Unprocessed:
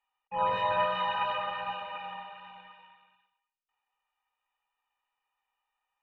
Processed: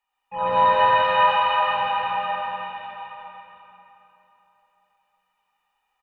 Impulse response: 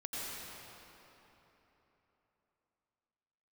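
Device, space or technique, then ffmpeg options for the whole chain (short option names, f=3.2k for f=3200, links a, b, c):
cave: -filter_complex "[0:a]asettb=1/sr,asplit=3[a][b][c];[a]atrim=end=0.654[d];[b]atrim=start=0.65:end=1.61,asetpts=PTS-STARTPTS,afade=t=in:d=0.004:c=qsin,afade=t=out:st=0.956:d=0.004:c=qsin,highpass=650[e];[c]atrim=start=1.606[f];[d][e]acrossfade=d=0.004:c1=hsin:c2=qsin[g];[g][f]acrossfade=d=0.004:c1=qsin:c2=hsin,aecho=1:1:362:0.266[h];[1:a]atrim=start_sample=2205[i];[h][i]afir=irnorm=-1:irlink=0,volume=7.5dB"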